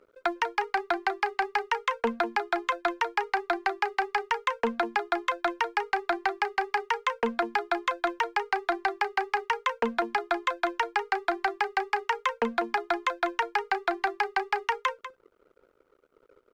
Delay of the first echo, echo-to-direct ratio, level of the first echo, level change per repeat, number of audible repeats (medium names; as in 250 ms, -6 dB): 195 ms, -13.0 dB, -13.0 dB, no regular repeats, 1